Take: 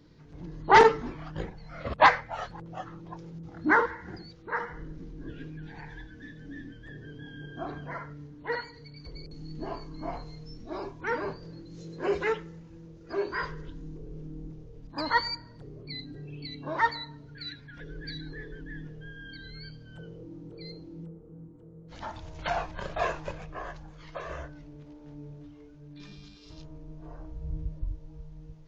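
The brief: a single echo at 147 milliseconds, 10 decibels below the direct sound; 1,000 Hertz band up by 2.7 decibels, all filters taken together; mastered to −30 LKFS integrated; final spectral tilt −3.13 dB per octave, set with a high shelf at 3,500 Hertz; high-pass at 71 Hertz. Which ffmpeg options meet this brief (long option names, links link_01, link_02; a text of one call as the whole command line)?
ffmpeg -i in.wav -af "highpass=71,equalizer=frequency=1000:width_type=o:gain=3.5,highshelf=frequency=3500:gain=-5,aecho=1:1:147:0.316,volume=-2dB" out.wav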